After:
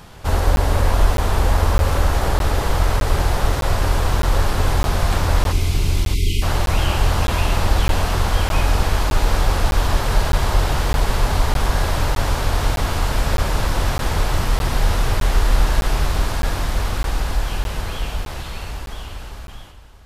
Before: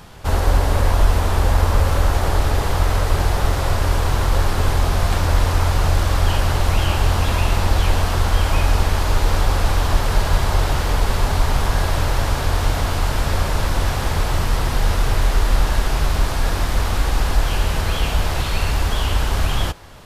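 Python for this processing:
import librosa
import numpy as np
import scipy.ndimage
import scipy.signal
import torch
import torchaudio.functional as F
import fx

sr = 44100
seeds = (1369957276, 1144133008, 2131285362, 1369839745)

y = fx.fade_out_tail(x, sr, length_s=4.28)
y = fx.spec_erase(y, sr, start_s=5.52, length_s=0.91, low_hz=440.0, high_hz=2000.0)
y = y + 10.0 ** (-11.5 / 20.0) * np.pad(y, (int(621 * sr / 1000.0), 0))[:len(y)]
y = fx.buffer_crackle(y, sr, first_s=0.56, period_s=0.61, block=512, kind='zero')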